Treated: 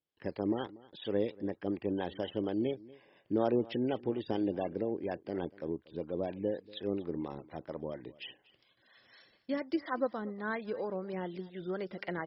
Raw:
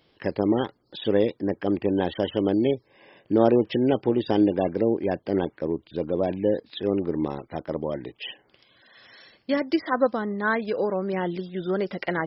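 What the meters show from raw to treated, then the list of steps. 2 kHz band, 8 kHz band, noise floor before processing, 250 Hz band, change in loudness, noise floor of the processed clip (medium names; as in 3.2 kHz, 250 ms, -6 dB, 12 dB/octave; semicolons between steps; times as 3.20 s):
-11.5 dB, no reading, -65 dBFS, -10.5 dB, -11.0 dB, -71 dBFS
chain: gate with hold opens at -49 dBFS; harmonic tremolo 4.2 Hz, depth 50%, crossover 570 Hz; delay 238 ms -21 dB; trim -8.5 dB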